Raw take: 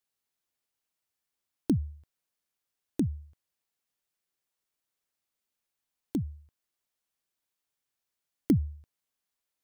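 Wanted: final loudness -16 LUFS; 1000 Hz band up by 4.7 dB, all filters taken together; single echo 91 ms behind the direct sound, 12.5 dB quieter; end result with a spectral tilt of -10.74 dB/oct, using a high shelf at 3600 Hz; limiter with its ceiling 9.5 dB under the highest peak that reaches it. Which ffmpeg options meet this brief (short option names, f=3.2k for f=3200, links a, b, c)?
-af "equalizer=f=1k:t=o:g=6,highshelf=f=3.6k:g=3.5,alimiter=limit=-21dB:level=0:latency=1,aecho=1:1:91:0.237,volume=19dB"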